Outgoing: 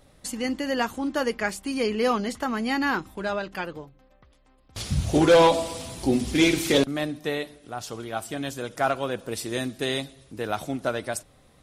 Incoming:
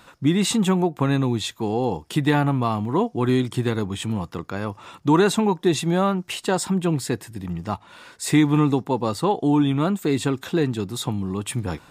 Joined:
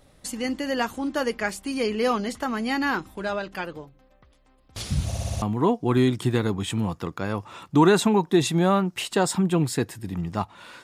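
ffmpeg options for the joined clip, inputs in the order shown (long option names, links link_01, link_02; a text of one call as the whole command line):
ffmpeg -i cue0.wav -i cue1.wav -filter_complex "[0:a]apad=whole_dur=10.83,atrim=end=10.83,asplit=6[link_01][link_02][link_03][link_04][link_05][link_06];[link_01]atrim=end=5.122[link_07];[link_02]atrim=start=5.058:end=5.122[link_08];[link_03]atrim=start=5.058:end=5.122[link_09];[link_04]atrim=start=5.058:end=5.122[link_10];[link_05]atrim=start=5.058:end=5.122[link_11];[link_06]atrim=start=5.058:end=5.122[link_12];[1:a]atrim=start=2.738:end=8.15[link_13];[link_07][link_08]acrossfade=duration=0.004:curve1=hsin:curve2=hsin[link_14];[link_14][link_09]acrossfade=duration=0.004:curve1=hsin:curve2=hsin[link_15];[link_15][link_10]acrossfade=duration=0.004:curve1=hsin:curve2=hsin[link_16];[link_16][link_11]acrossfade=duration=0.004:curve1=hsin:curve2=hsin[link_17];[link_17][link_12]acrossfade=duration=0.004:curve1=hsin:curve2=hsin[link_18];[link_18][link_13]acrossfade=duration=0.004:curve1=hsin:curve2=hsin" out.wav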